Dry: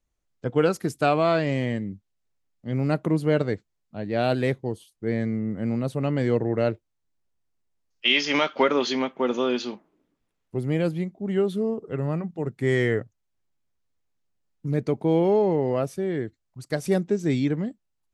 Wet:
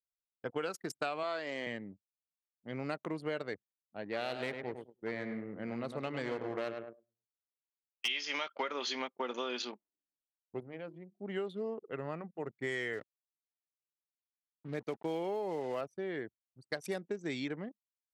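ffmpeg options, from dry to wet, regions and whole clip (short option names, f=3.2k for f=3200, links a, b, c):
-filter_complex "[0:a]asettb=1/sr,asplit=3[a][b][c];[a]atrim=end=1.234[d];[b]atrim=start=1.23:end=1.67,asetpts=PTS-STARTPTS,afade=t=in:d=0.004:c=qsin,afade=t=out:st=0.436:d=0.004:c=qsin,highpass=250,equalizer=f=2.5k:t=o:w=0.22:g=-7[e];[c]atrim=start=1.666[f];[d][e]acrossfade=d=0.004:c1=hsin:c2=qsin[g];[g][f]acrossfade=d=0.004:c1=qsin:c2=hsin,asettb=1/sr,asplit=3[h][i][j];[h]atrim=end=4.084[k];[i]atrim=start=4.08:end=8.08,asetpts=PTS-STARTPTS,afade=t=in:d=0.004:c=qsin,afade=t=out:st=3.996:d=0.004:c=qsin,aeval=exprs='clip(val(0),-1,0.0668)':c=same,asplit=2[l][m];[m]adelay=103,lowpass=f=4.3k:p=1,volume=-8dB,asplit=2[n][o];[o]adelay=103,lowpass=f=4.3k:p=1,volume=0.41,asplit=2[p][q];[q]adelay=103,lowpass=f=4.3k:p=1,volume=0.41,asplit=2[r][s];[s]adelay=103,lowpass=f=4.3k:p=1,volume=0.41,asplit=2[t][u];[u]adelay=103,lowpass=f=4.3k:p=1,volume=0.41[v];[l][n][p][r][t][v]amix=inputs=6:normalize=0,atrim=end_sample=176400[w];[j]atrim=start=8.076[x];[k][w]acrossfade=d=0.004:c1=hsin:c2=qsin[y];[y][x]acrossfade=d=0.004:c1=qsin:c2=hsin,asettb=1/sr,asplit=3[z][aa][ab];[z]atrim=end=10.604[ac];[aa]atrim=start=10.6:end=11.2,asetpts=PTS-STARTPTS,afade=t=in:d=0.004:c=qsin,afade=t=out:st=0.596:d=0.004:c=qsin,bandreject=f=50:t=h:w=6,bandreject=f=100:t=h:w=6,bandreject=f=150:t=h:w=6,bandreject=f=200:t=h:w=6,bandreject=f=250:t=h:w=6,bandreject=f=300:t=h:w=6,bandreject=f=350:t=h:w=6,bandreject=f=400:t=h:w=6,bandreject=f=450:t=h:w=6,acompressor=threshold=-38dB:ratio=2:attack=3.2:release=140:knee=1:detection=peak[ad];[ab]atrim=start=11.196[ae];[ac][ad]acrossfade=d=0.004:c1=hsin:c2=qsin[af];[af][ae]acrossfade=d=0.004:c1=qsin:c2=hsin,asettb=1/sr,asplit=3[ag][ah][ai];[ag]atrim=end=12.934[aj];[ah]atrim=start=12.93:end=15.81,asetpts=PTS-STARTPTS,afade=t=in:d=0.004:c=qsin,afade=t=out:st=2.876:d=0.004:c=qsin,highpass=f=47:w=0.5412,highpass=f=47:w=1.3066,aeval=exprs='val(0)*gte(abs(val(0)),0.01)':c=same[ak];[ai]atrim=start=15.806[al];[aj][ak]acrossfade=d=0.004:c1=hsin:c2=qsin[am];[am][al]acrossfade=d=0.004:c1=qsin:c2=hsin,anlmdn=2.51,highpass=f=1.1k:p=1,acompressor=threshold=-33dB:ratio=6"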